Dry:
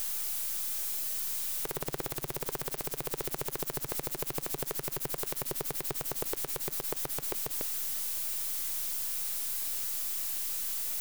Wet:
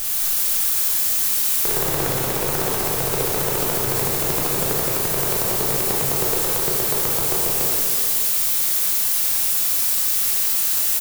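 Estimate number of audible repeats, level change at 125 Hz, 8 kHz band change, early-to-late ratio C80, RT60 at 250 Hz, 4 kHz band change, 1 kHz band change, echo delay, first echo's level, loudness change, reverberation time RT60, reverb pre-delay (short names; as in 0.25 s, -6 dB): 1, +15.5 dB, +14.5 dB, -0.5 dB, 2.0 s, +15.0 dB, +15.0 dB, 0.373 s, -10.5 dB, +14.5 dB, 2.2 s, 14 ms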